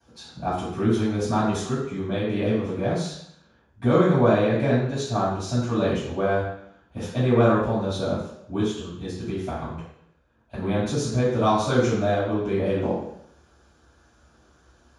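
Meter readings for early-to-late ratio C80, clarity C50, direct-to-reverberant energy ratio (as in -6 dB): 4.5 dB, 1.5 dB, -11.5 dB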